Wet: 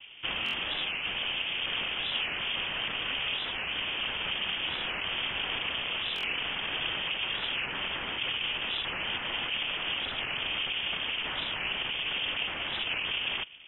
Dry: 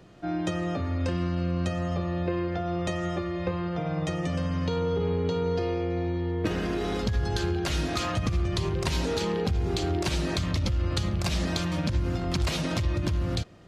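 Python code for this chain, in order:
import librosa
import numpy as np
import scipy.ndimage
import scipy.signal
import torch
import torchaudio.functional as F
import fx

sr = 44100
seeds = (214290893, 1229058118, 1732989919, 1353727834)

p1 = fx.rider(x, sr, range_db=10, speed_s=0.5)
p2 = x + (p1 * 10.0 ** (2.5 / 20.0))
p3 = (np.mod(10.0 ** (19.0 / 20.0) * p2 + 1.0, 2.0) - 1.0) / 10.0 ** (19.0 / 20.0)
p4 = fx.noise_vocoder(p3, sr, seeds[0], bands=2)
p5 = fx.air_absorb(p4, sr, metres=190.0)
p6 = fx.freq_invert(p5, sr, carrier_hz=3400)
p7 = fx.buffer_glitch(p6, sr, at_s=(0.44, 6.15), block=1024, repeats=3)
p8 = fx.record_warp(p7, sr, rpm=45.0, depth_cents=160.0)
y = p8 * 10.0 ** (-5.5 / 20.0)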